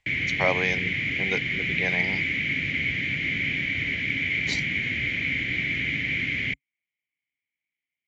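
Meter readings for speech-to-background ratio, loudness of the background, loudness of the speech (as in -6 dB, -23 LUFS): -4.5 dB, -25.0 LUFS, -29.5 LUFS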